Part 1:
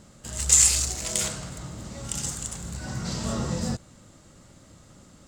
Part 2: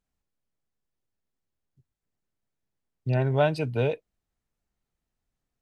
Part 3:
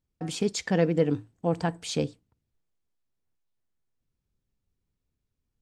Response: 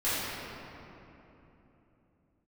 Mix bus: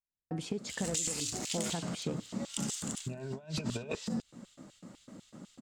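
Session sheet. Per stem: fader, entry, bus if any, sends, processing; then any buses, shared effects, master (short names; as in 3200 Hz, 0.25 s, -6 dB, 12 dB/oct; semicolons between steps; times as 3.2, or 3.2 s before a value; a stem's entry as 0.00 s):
-2.0 dB, 0.45 s, bus A, no send, LFO high-pass square 4 Hz 210–3200 Hz
-5.0 dB, 0.00 s, no bus, no send, ripple EQ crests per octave 1.5, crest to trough 8 dB
-5.0 dB, 0.10 s, bus A, no send, compressor, threshold -27 dBFS, peak gain reduction 10 dB
bus A: 0.0 dB, high shelf 2000 Hz -8.5 dB; compressor 10:1, threshold -33 dBFS, peak gain reduction 12.5 dB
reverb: off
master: gate with hold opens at -53 dBFS; negative-ratio compressor -34 dBFS, ratio -0.5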